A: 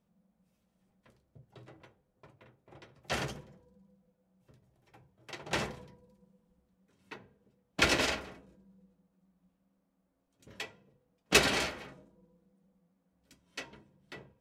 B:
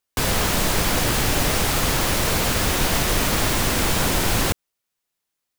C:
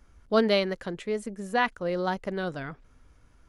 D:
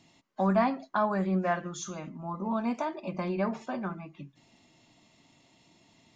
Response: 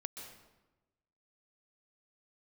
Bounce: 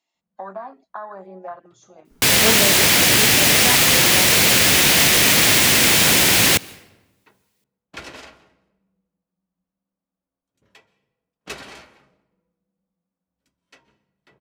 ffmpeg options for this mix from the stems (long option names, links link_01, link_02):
-filter_complex "[0:a]equalizer=frequency=1100:width=1.3:gain=3.5,adelay=150,volume=-12.5dB,asplit=2[link_01][link_02];[link_02]volume=-9.5dB[link_03];[1:a]highpass=120,highshelf=frequency=1600:width_type=q:width=1.5:gain=6.5,adelay=2050,volume=2dB,asplit=2[link_04][link_05];[link_05]volume=-15.5dB[link_06];[2:a]adelay=2100,volume=-1dB[link_07];[3:a]afwtdn=0.0251,highpass=560,acompressor=threshold=-30dB:ratio=10,volume=1dB[link_08];[4:a]atrim=start_sample=2205[link_09];[link_03][link_06]amix=inputs=2:normalize=0[link_10];[link_10][link_09]afir=irnorm=-1:irlink=0[link_11];[link_01][link_04][link_07][link_08][link_11]amix=inputs=5:normalize=0"